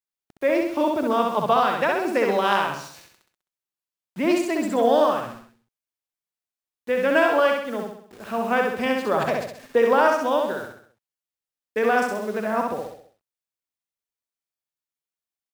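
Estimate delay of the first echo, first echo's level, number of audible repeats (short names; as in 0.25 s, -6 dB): 65 ms, -3.0 dB, 5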